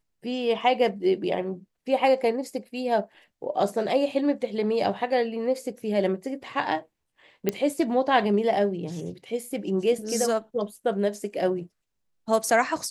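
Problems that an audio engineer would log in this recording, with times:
7.49 pop -10 dBFS

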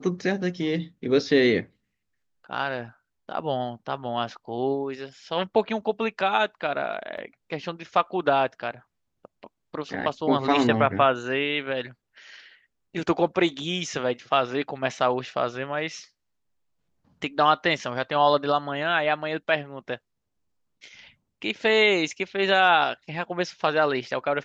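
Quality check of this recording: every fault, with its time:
7.17–7.18 gap 6 ms

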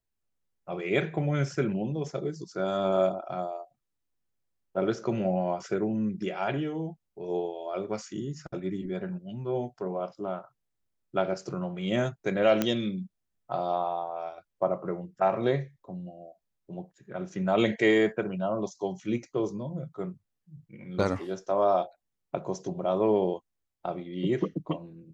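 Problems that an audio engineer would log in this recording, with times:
12.62 pop -11 dBFS

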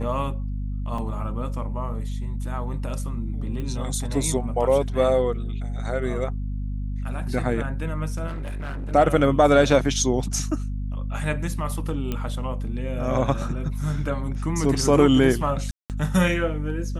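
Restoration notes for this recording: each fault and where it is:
hum 50 Hz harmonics 5 -28 dBFS
0.98 gap 3.3 ms
3.6 pop -21 dBFS
8.27–8.92 clipped -27.5 dBFS
12.12 pop -14 dBFS
15.71–15.9 gap 0.188 s

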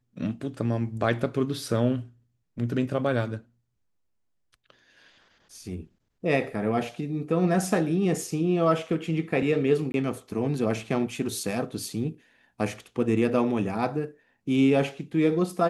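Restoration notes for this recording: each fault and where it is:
9.92–9.94 gap 21 ms

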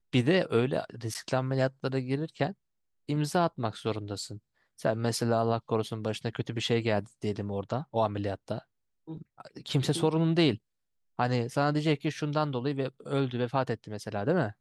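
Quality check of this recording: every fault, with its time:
1.14–1.15 gap 9.3 ms

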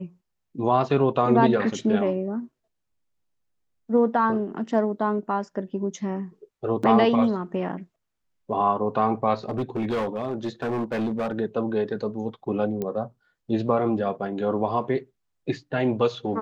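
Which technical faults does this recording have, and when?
6.83 gap 5 ms
9.49–11.39 clipped -22.5 dBFS
12.82 pop -17 dBFS

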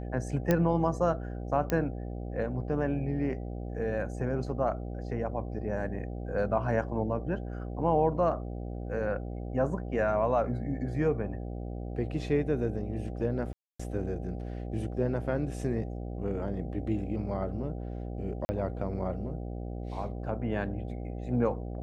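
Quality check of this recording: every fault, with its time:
buzz 60 Hz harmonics 13 -37 dBFS
0.51 pop -12 dBFS
1.7 pop -15 dBFS
13.53–13.79 gap 0.265 s
18.45–18.49 gap 40 ms

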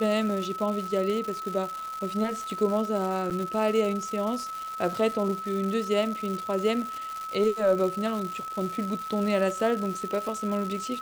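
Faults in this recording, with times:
crackle 350/s -32 dBFS
tone 1300 Hz -33 dBFS
3.3–3.31 gap 7.5 ms

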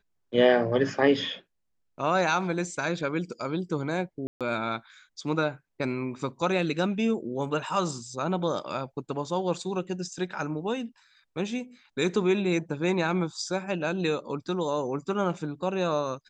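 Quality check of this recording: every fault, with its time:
4.27–4.41 gap 0.137 s

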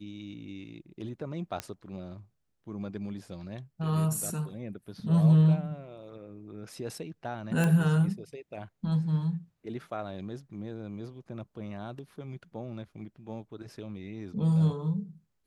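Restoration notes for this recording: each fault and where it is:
1.6 pop -17 dBFS
7.64 pop -16 dBFS

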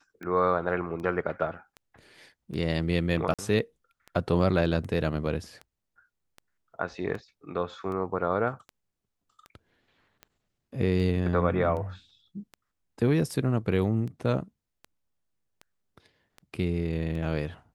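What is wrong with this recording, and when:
tick 78 rpm -28 dBFS
3.34–3.39 gap 46 ms

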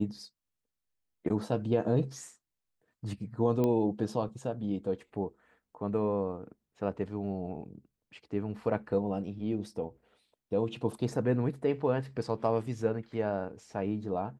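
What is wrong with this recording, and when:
3.64 pop -18 dBFS

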